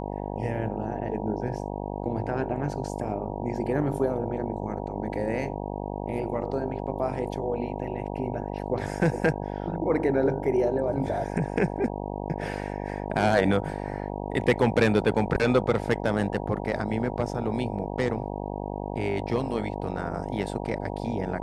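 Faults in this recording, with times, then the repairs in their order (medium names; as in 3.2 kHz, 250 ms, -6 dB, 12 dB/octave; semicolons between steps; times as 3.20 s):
buzz 50 Hz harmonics 19 -33 dBFS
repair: de-hum 50 Hz, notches 19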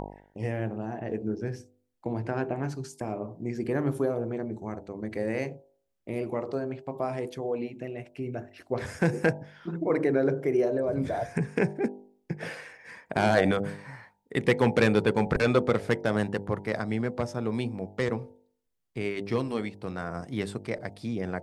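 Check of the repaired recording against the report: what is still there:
nothing left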